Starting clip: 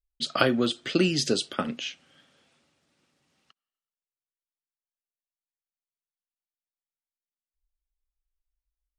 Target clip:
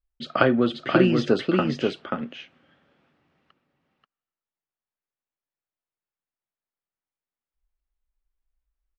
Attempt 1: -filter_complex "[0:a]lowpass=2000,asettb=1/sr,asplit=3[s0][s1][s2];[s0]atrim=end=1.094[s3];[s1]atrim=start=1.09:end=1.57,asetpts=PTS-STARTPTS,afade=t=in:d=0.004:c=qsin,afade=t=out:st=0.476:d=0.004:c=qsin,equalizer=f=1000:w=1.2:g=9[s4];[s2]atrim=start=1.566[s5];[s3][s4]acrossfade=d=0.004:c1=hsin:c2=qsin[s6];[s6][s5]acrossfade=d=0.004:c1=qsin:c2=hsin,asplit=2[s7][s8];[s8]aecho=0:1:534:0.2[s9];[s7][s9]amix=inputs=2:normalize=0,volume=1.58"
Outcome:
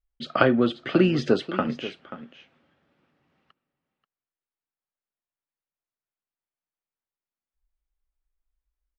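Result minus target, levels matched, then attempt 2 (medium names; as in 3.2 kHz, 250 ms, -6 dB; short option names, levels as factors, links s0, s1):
echo-to-direct -10.5 dB
-filter_complex "[0:a]lowpass=2000,asettb=1/sr,asplit=3[s0][s1][s2];[s0]atrim=end=1.094[s3];[s1]atrim=start=1.09:end=1.57,asetpts=PTS-STARTPTS,afade=t=in:d=0.004:c=qsin,afade=t=out:st=0.476:d=0.004:c=qsin,equalizer=f=1000:w=1.2:g=9[s4];[s2]atrim=start=1.566[s5];[s3][s4]acrossfade=d=0.004:c1=hsin:c2=qsin[s6];[s6][s5]acrossfade=d=0.004:c1=qsin:c2=hsin,asplit=2[s7][s8];[s8]aecho=0:1:534:0.668[s9];[s7][s9]amix=inputs=2:normalize=0,volume=1.58"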